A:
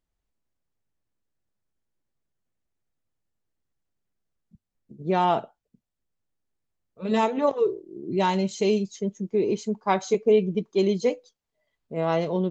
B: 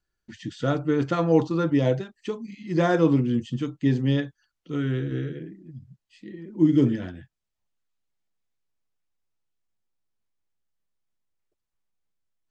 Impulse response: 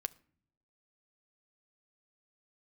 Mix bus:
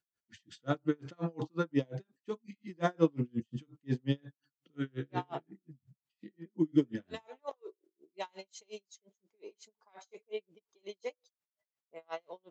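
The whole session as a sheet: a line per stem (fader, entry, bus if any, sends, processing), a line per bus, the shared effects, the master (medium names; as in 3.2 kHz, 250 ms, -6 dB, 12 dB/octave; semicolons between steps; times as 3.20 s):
-8.5 dB, 0.00 s, no send, high-pass 660 Hz
-4.5 dB, 0.00 s, send -22 dB, high-pass 120 Hz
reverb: on, RT60 0.55 s, pre-delay 6 ms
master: logarithmic tremolo 5.6 Hz, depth 39 dB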